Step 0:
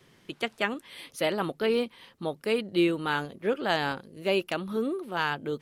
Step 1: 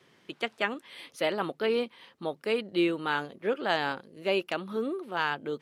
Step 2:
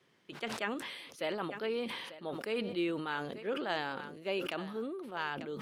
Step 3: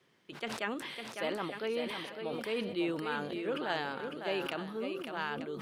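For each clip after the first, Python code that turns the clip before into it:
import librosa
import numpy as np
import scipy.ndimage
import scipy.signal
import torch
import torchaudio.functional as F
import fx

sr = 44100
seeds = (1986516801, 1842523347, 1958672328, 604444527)

y1 = fx.highpass(x, sr, hz=270.0, slope=6)
y1 = fx.high_shelf(y1, sr, hz=7700.0, db=-10.5)
y2 = y1 + 10.0 ** (-20.5 / 20.0) * np.pad(y1, (int(893 * sr / 1000.0), 0))[:len(y1)]
y2 = fx.sustainer(y2, sr, db_per_s=42.0)
y2 = y2 * librosa.db_to_amplitude(-8.0)
y3 = y2 + 10.0 ** (-6.5 / 20.0) * np.pad(y2, (int(553 * sr / 1000.0), 0))[:len(y2)]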